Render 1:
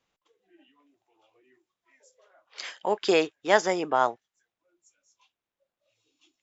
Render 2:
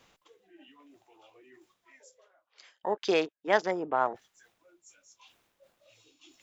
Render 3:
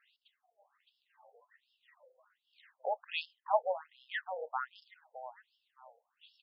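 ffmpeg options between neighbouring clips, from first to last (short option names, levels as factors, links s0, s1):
-af "afwtdn=0.0158,areverse,acompressor=mode=upward:threshold=0.0282:ratio=2.5,areverse,volume=0.631"
-af "bandreject=f=2300:w=6.3,aecho=1:1:614|1228|1842:0.708|0.163|0.0375,afftfilt=real='re*between(b*sr/1024,600*pow(3900/600,0.5+0.5*sin(2*PI*1.3*pts/sr))/1.41,600*pow(3900/600,0.5+0.5*sin(2*PI*1.3*pts/sr))*1.41)':imag='im*between(b*sr/1024,600*pow(3900/600,0.5+0.5*sin(2*PI*1.3*pts/sr))/1.41,600*pow(3900/600,0.5+0.5*sin(2*PI*1.3*pts/sr))*1.41)':win_size=1024:overlap=0.75,volume=0.891"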